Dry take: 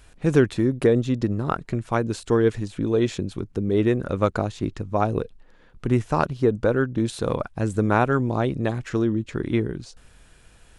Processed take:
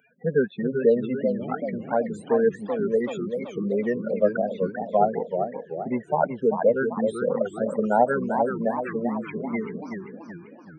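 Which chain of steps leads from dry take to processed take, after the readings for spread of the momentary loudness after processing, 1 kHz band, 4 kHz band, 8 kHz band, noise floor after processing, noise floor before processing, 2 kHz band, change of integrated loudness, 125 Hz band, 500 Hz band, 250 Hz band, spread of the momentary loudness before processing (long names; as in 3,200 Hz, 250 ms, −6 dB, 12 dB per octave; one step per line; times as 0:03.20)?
9 LU, +1.5 dB, below −10 dB, below −10 dB, −48 dBFS, −52 dBFS, −2.5 dB, −1.5 dB, −12.0 dB, +1.0 dB, −4.0 dB, 8 LU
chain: spectral peaks only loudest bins 16
Butterworth high-pass 190 Hz 36 dB per octave
phaser with its sweep stopped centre 1,200 Hz, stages 6
feedback echo with a swinging delay time 385 ms, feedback 50%, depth 209 cents, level −6.5 dB
level +5.5 dB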